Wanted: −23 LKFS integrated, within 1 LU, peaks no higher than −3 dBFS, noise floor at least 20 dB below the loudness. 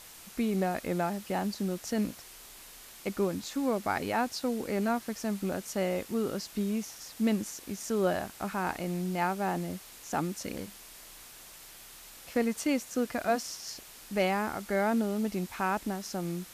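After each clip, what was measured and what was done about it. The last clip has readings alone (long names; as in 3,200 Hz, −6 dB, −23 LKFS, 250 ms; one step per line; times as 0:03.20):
background noise floor −50 dBFS; target noise floor −52 dBFS; integrated loudness −32.0 LKFS; sample peak −16.5 dBFS; target loudness −23.0 LKFS
→ broadband denoise 6 dB, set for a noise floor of −50 dBFS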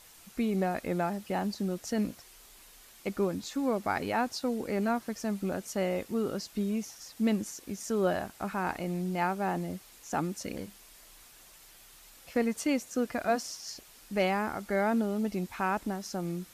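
background noise floor −55 dBFS; integrated loudness −32.0 LKFS; sample peak −16.5 dBFS; target loudness −23.0 LKFS
→ level +9 dB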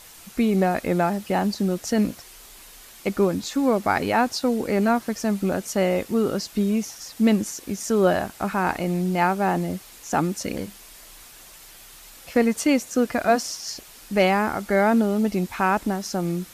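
integrated loudness −23.0 LKFS; sample peak −7.5 dBFS; background noise floor −46 dBFS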